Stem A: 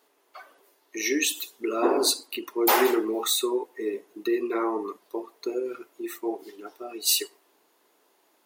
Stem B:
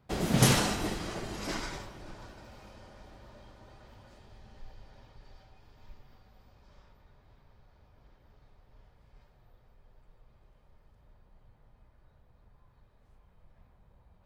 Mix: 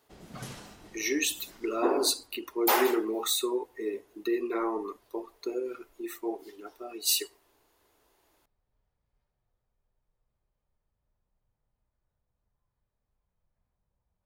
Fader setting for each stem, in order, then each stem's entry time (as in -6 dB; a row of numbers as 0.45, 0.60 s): -3.5, -19.5 dB; 0.00, 0.00 s